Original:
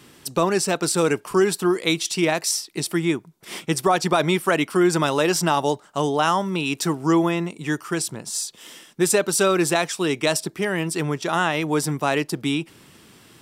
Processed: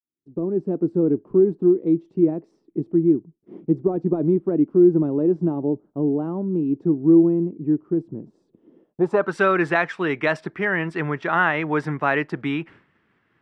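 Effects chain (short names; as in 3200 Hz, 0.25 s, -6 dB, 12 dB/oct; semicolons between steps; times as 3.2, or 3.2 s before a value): opening faded in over 0.72 s; expander -39 dBFS; low-pass sweep 320 Hz -> 1800 Hz, 8.71–9.35; gain -1.5 dB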